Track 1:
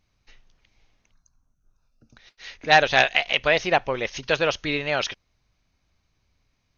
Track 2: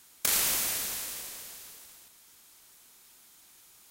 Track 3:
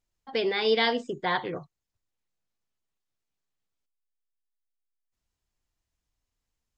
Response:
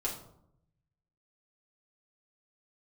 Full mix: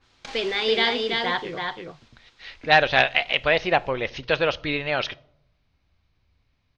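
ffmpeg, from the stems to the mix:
-filter_complex "[0:a]equalizer=f=75:t=o:w=0.88:g=7,volume=-1dB,asplit=2[a][b];[b]volume=-19.5dB[c];[1:a]acompressor=threshold=-33dB:ratio=6,adynamicequalizer=threshold=0.00141:dfrequency=2400:dqfactor=0.7:tfrequency=2400:tqfactor=0.7:attack=5:release=100:ratio=0.375:range=1.5:mode=cutabove:tftype=highshelf,volume=-1dB,asplit=2[d][e];[e]volume=-5dB[f];[2:a]equalizer=f=3.5k:w=0.54:g=6.5,volume=-1dB,asplit=2[g][h];[h]volume=-4dB[i];[3:a]atrim=start_sample=2205[j];[c][f]amix=inputs=2:normalize=0[k];[k][j]afir=irnorm=-1:irlink=0[l];[i]aecho=0:1:332:1[m];[a][d][g][l][m]amix=inputs=5:normalize=0,lowpass=f=4.6k:w=0.5412,lowpass=f=4.6k:w=1.3066"

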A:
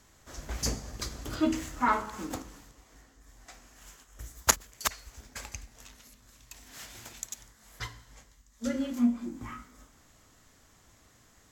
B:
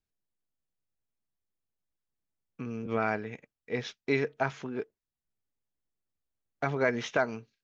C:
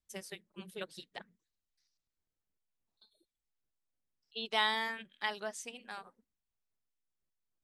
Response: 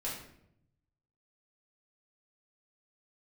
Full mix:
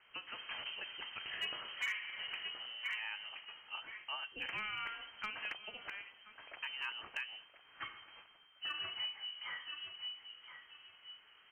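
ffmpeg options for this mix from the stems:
-filter_complex "[0:a]lowshelf=f=310:g=-9,volume=-1dB,asplit=3[a][b][c];[b]volume=-12dB[d];[c]volume=-9.5dB[e];[1:a]volume=-10.5dB,asplit=3[f][g][h];[g]volume=-23dB[i];[2:a]volume=-1.5dB,asplit=3[j][k][l];[k]volume=-10.5dB[m];[l]volume=-23.5dB[n];[h]apad=whole_len=508022[o];[a][o]sidechaincompress=threshold=-47dB:ratio=8:attack=5.8:release=544[p];[3:a]atrim=start_sample=2205[q];[d][i][m]amix=inputs=3:normalize=0[r];[r][q]afir=irnorm=-1:irlink=0[s];[e][n]amix=inputs=2:normalize=0,aecho=0:1:1023|2046|3069:1|0.21|0.0441[t];[p][f][j][s][t]amix=inputs=5:normalize=0,acrossover=split=220|710[u][v][w];[u]acompressor=threshold=-49dB:ratio=4[x];[v]acompressor=threshold=-47dB:ratio=4[y];[w]acompressor=threshold=-40dB:ratio=4[z];[x][y][z]amix=inputs=3:normalize=0,lowpass=f=2.7k:t=q:w=0.5098,lowpass=f=2.7k:t=q:w=0.6013,lowpass=f=2.7k:t=q:w=0.9,lowpass=f=2.7k:t=q:w=2.563,afreqshift=-3200,volume=31.5dB,asoftclip=hard,volume=-31.5dB"

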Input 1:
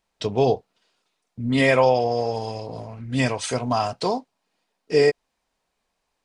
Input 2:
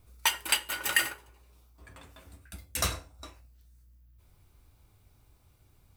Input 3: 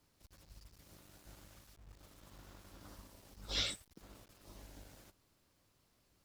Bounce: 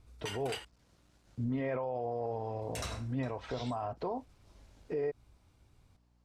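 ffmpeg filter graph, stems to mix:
-filter_complex "[0:a]lowpass=1.3k,equalizer=f=200:w=6:g=-9,alimiter=limit=-15dB:level=0:latency=1,volume=-3.5dB[a];[1:a]volume=-2.5dB,asplit=3[b][c][d];[b]atrim=end=0.65,asetpts=PTS-STARTPTS,afade=t=out:st=0.646:d=0.004:c=hsin[e];[c]atrim=start=0.65:end=2.62,asetpts=PTS-STARTPTS,volume=0[f];[d]atrim=start=2.62,asetpts=PTS-STARTPTS,afade=t=in:d=0.004:c=hsin[g];[e][f][g]concat=n=3:v=0:a=1[h];[2:a]aeval=exprs='val(0)+0.000891*(sin(2*PI*60*n/s)+sin(2*PI*2*60*n/s)/2+sin(2*PI*3*60*n/s)/3+sin(2*PI*4*60*n/s)/4+sin(2*PI*5*60*n/s)/5)':c=same,volume=-7.5dB[i];[a][h][i]amix=inputs=3:normalize=0,lowpass=7.7k,alimiter=level_in=3dB:limit=-24dB:level=0:latency=1:release=116,volume=-3dB"

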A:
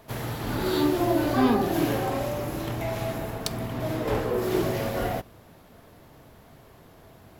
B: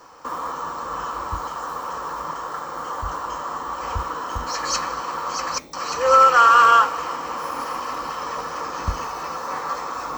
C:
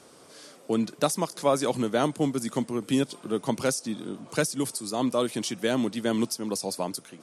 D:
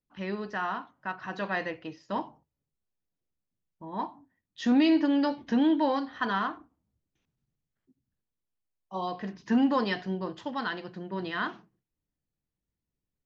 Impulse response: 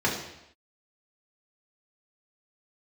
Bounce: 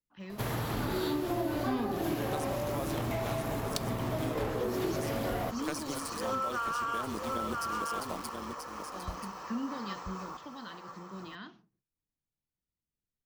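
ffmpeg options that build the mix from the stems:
-filter_complex "[0:a]adelay=300,volume=1.5dB[a];[1:a]adelay=200,volume=-15dB,asplit=2[b][c];[c]volume=-6dB[d];[2:a]acrusher=bits=5:mix=0:aa=0.000001,tremolo=f=150:d=0.824,adelay=1300,volume=-6dB,asplit=2[e][f];[f]volume=-8dB[g];[3:a]acrossover=split=270|3000[h][i][j];[i]acompressor=threshold=-46dB:ratio=2.5[k];[h][k][j]amix=inputs=3:normalize=0,volume=-7dB[l];[d][g]amix=inputs=2:normalize=0,aecho=0:1:983:1[m];[a][b][e][l][m]amix=inputs=5:normalize=0,acompressor=threshold=-30dB:ratio=5"

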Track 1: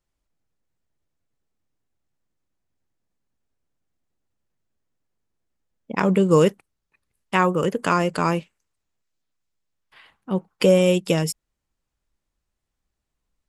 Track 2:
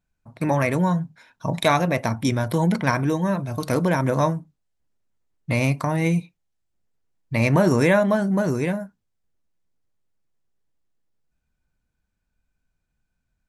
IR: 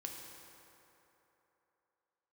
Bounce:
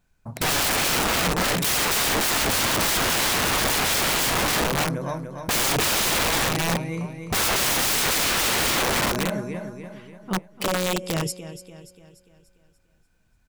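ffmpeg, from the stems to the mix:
-filter_complex "[0:a]alimiter=limit=-14.5dB:level=0:latency=1:release=38,flanger=delay=0.8:depth=5.3:regen=-75:speed=1.8:shape=sinusoidal,volume=-3.5dB,asplit=2[a][b];[b]volume=-13dB[c];[1:a]bandreject=f=50:t=h:w=6,bandreject=f=100:t=h:w=6,bandreject=f=150:t=h:w=6,bandreject=f=200:t=h:w=6,bandreject=f=250:t=h:w=6,bandreject=f=300:t=h:w=6,acontrast=26,volume=-0.5dB,asplit=2[d][e];[e]volume=-6.5dB[f];[c][f]amix=inputs=2:normalize=0,aecho=0:1:292|584|876|1168|1460|1752|2044:1|0.47|0.221|0.104|0.0488|0.0229|0.0108[g];[a][d][g]amix=inputs=3:normalize=0,acontrast=51,aeval=exprs='(mod(7.5*val(0)+1,2)-1)/7.5':c=same"

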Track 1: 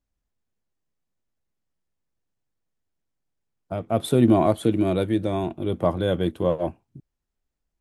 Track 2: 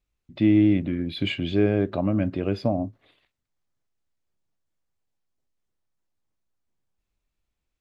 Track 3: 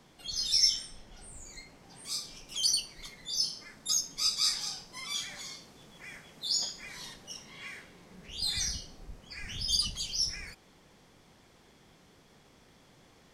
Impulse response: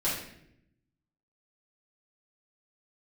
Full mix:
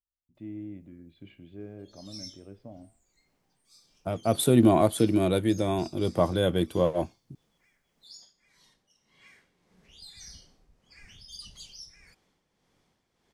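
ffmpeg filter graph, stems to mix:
-filter_complex "[0:a]highshelf=f=4.7k:g=10.5,adelay=350,volume=-2dB[a];[1:a]lowpass=f=1.2k:p=1,flanger=delay=9.4:depth=9.5:regen=-84:speed=0.31:shape=triangular,volume=-17dB[b];[2:a]tremolo=f=1.7:d=0.57,adelay=1600,volume=-10dB,afade=t=in:st=8.94:d=0.51:silence=0.398107[c];[a][b][c]amix=inputs=3:normalize=0"

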